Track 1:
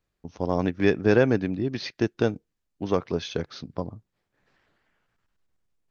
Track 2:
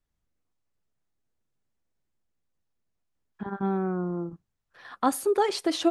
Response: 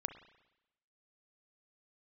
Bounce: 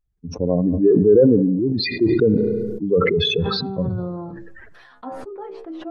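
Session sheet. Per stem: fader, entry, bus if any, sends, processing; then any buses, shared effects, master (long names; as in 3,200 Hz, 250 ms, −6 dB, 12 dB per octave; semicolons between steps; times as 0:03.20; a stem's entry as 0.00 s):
+3.0 dB, 0.00 s, send −5 dB, expanding power law on the bin magnitudes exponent 3.3
−3.0 dB, 0.00 s, no send, hum removal 113.1 Hz, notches 4; treble cut that deepens with the level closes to 960 Hz, closed at −26 dBFS; stiff-string resonator 63 Hz, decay 0.25 s, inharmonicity 0.002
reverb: on, RT60 0.95 s, pre-delay 33 ms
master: level that may fall only so fast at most 27 dB per second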